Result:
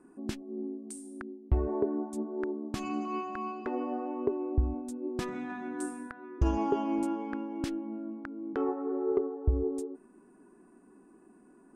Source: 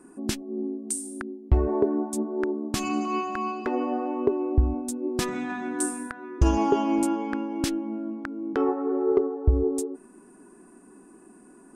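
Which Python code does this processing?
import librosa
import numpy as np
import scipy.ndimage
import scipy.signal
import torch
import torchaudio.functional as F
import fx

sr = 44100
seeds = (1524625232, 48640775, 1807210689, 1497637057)

y = fx.high_shelf(x, sr, hz=4000.0, db=-11.0)
y = y * 10.0 ** (-6.5 / 20.0)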